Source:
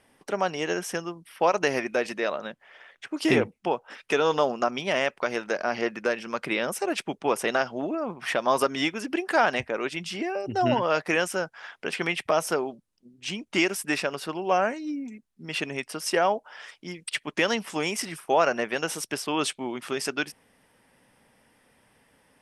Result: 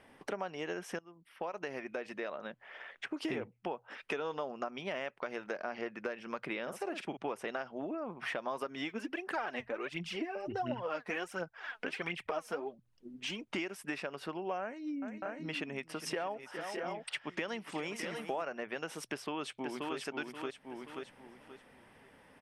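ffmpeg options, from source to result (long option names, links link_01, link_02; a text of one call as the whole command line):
ffmpeg -i in.wav -filter_complex "[0:a]asettb=1/sr,asplit=3[link_01][link_02][link_03];[link_01]atrim=end=6.624[link_04];[link_02]atrim=start=6.62:end=7.17,asetpts=PTS-STARTPTS,afade=type=in:duration=0.004:curve=qsin,afade=type=out:start_time=0.546:duration=0.004:curve=qsin,asplit=2[link_05][link_06];[link_06]adelay=48,volume=-9dB[link_07];[link_05][link_07]amix=inputs=2:normalize=0,atrim=end_sample=24255[link_08];[link_03]atrim=start=7.166[link_09];[link_04][link_08]acrossfade=duration=0.004:curve1=hsin:curve2=qsin[link_10];[link_10][link_09]acrossfade=duration=0.004:curve1=qsin:curve2=hsin,asplit=3[link_11][link_12][link_13];[link_11]afade=type=out:start_time=8.88:duration=0.02[link_14];[link_12]aphaser=in_gain=1:out_gain=1:delay=4.8:decay=0.62:speed=1.4:type=triangular,afade=type=in:start_time=8.88:duration=0.02,afade=type=out:start_time=13.41:duration=0.02[link_15];[link_13]afade=type=in:start_time=13.41:duration=0.02[link_16];[link_14][link_15][link_16]amix=inputs=3:normalize=0,asettb=1/sr,asplit=3[link_17][link_18][link_19];[link_17]atrim=end=14.614[link_20];[link_18]atrim=start=14.61:end=18.43,asetpts=PTS-STARTPTS,afade=type=in:duration=0.004:curve=qsin,afade=type=out:start_time=3.816:duration=0.004:curve=qsin,aecho=1:1:410|611|643:0.141|0.2|0.299,atrim=end_sample=168462[link_21];[link_19]atrim=start=18.426[link_22];[link_20][link_21]acrossfade=duration=0.004:curve1=hsin:curve2=qsin[link_23];[link_23][link_22]acrossfade=duration=0.004:curve1=qsin:curve2=hsin,asplit=2[link_24][link_25];[link_25]afade=type=in:start_time=19.05:duration=0.01,afade=type=out:start_time=19.97:duration=0.01,aecho=0:1:530|1060|1590|2120:0.707946|0.176986|0.0442466|0.0110617[link_26];[link_24][link_26]amix=inputs=2:normalize=0,asplit=2[link_27][link_28];[link_27]atrim=end=0.99,asetpts=PTS-STARTPTS,afade=type=out:start_time=0.986:duration=0.004:curve=hsin:silence=0.11885[link_29];[link_28]atrim=start=0.99,asetpts=PTS-STARTPTS,afade=type=in:duration=2.13:silence=0.11885[link_30];[link_29][link_30]concat=n=2:v=0:a=1,bass=frequency=250:gain=-1,treble=frequency=4000:gain=-10,bandreject=frequency=60:width_type=h:width=6,bandreject=frequency=120:width_type=h:width=6,acompressor=threshold=-41dB:ratio=4,volume=3dB" out.wav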